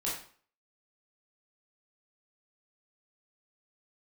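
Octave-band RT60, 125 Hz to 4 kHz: 0.45, 0.50, 0.45, 0.50, 0.45, 0.40 seconds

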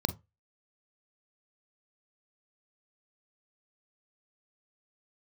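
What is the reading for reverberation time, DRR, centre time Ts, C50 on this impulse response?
non-exponential decay, 11.5 dB, 5 ms, 15.5 dB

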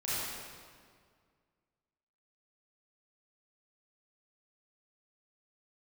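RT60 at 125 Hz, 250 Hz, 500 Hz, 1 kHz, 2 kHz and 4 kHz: 2.3, 2.2, 2.0, 1.9, 1.6, 1.5 seconds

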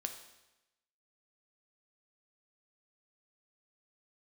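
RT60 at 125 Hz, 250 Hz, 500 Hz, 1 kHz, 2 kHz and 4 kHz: 1.0, 1.0, 1.0, 0.95, 0.95, 0.95 seconds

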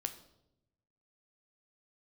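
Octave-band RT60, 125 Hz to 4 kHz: 1.4, 1.2, 1.0, 0.70, 0.60, 0.65 seconds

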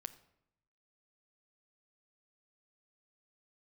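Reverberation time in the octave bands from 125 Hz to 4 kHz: 1.1, 0.95, 0.80, 0.80, 0.65, 0.55 seconds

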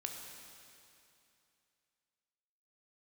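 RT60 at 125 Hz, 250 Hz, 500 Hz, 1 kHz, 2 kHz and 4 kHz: 2.8, 2.7, 2.7, 2.7, 2.7, 2.6 seconds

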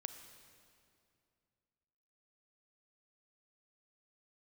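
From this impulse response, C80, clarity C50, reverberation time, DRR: 9.5 dB, 8.5 dB, 2.5 s, 8.0 dB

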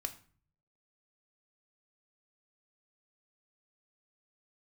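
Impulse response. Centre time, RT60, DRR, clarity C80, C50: 6 ms, 0.45 s, 6.5 dB, 18.0 dB, 14.5 dB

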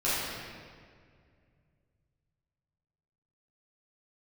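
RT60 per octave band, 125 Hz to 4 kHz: 3.8, 2.7, 2.3, 1.8, 1.8, 1.4 seconds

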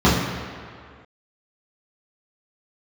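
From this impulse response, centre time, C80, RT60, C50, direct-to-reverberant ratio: 87 ms, 3.5 dB, 2.1 s, 1.5 dB, −10.0 dB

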